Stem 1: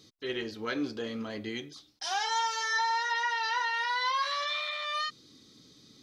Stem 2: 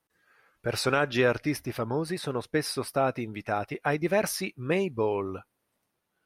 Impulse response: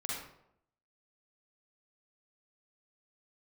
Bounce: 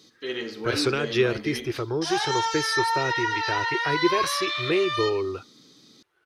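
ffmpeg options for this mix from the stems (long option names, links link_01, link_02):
-filter_complex "[0:a]highpass=170,volume=1.5dB,asplit=2[link_01][link_02];[link_02]volume=-9dB[link_03];[1:a]firequalizer=gain_entry='entry(140,0);entry(210,-18);entry(350,10);entry(560,0);entry(1300,8);entry(12000,-7)':delay=0.05:min_phase=1,acrossover=split=380|3000[link_04][link_05][link_06];[link_05]acompressor=threshold=-40dB:ratio=2.5[link_07];[link_04][link_07][link_06]amix=inputs=3:normalize=0,volume=2dB[link_08];[2:a]atrim=start_sample=2205[link_09];[link_03][link_09]afir=irnorm=-1:irlink=0[link_10];[link_01][link_08][link_10]amix=inputs=3:normalize=0"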